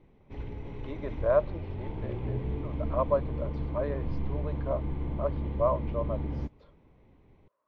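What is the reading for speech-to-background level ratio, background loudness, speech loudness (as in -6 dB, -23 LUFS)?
3.5 dB, -36.0 LUFS, -32.5 LUFS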